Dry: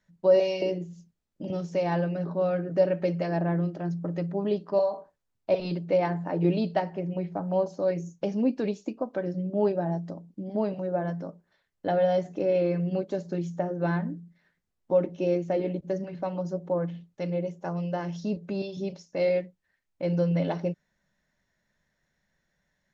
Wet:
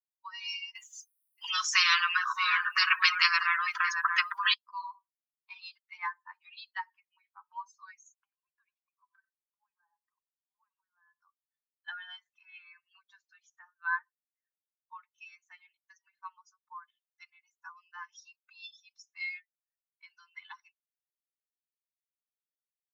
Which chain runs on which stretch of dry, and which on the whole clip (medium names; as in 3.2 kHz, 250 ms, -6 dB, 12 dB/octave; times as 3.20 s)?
0.75–4.54 s: treble shelf 3.7 kHz -10.5 dB + delay 628 ms -12 dB + spectrum-flattening compressor 10:1
8.14–11.22 s: compression, threshold -34 dBFS + distance through air 400 m + delay 92 ms -12.5 dB
12.03–13.64 s: low-pass 4.4 kHz + tape noise reduction on one side only encoder only
whole clip: expander on every frequency bin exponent 2; steep high-pass 1 kHz 96 dB/octave; trim +10 dB